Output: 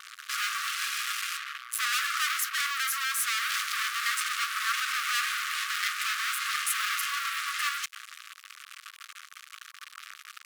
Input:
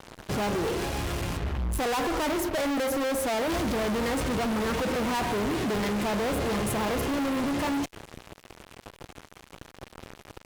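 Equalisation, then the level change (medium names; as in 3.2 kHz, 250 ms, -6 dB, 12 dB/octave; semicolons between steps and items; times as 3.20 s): brick-wall FIR high-pass 1.1 kHz; +6.0 dB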